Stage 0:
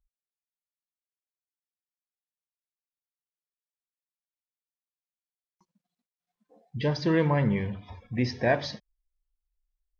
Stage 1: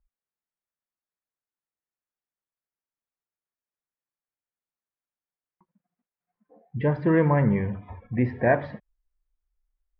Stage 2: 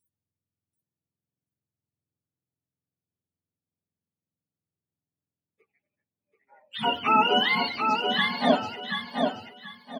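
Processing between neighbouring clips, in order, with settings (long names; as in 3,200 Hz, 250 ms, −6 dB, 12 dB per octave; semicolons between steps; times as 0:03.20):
low-pass filter 2,000 Hz 24 dB per octave; level +3.5 dB
frequency axis turned over on the octave scale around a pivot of 650 Hz; repeating echo 733 ms, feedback 25%, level −4.5 dB; level +2 dB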